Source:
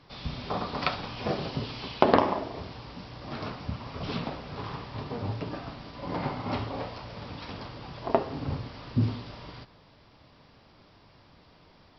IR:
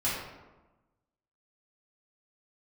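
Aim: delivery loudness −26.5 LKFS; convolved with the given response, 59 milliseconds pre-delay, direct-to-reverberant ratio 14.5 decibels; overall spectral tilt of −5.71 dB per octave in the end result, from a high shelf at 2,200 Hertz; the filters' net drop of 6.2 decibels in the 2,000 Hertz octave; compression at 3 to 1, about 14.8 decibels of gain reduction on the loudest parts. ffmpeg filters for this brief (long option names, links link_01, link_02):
-filter_complex "[0:a]equalizer=frequency=2000:width_type=o:gain=-6,highshelf=frequency=2200:gain=-4,acompressor=threshold=-40dB:ratio=3,asplit=2[link_01][link_02];[1:a]atrim=start_sample=2205,adelay=59[link_03];[link_02][link_03]afir=irnorm=-1:irlink=0,volume=-23.5dB[link_04];[link_01][link_04]amix=inputs=2:normalize=0,volume=16.5dB"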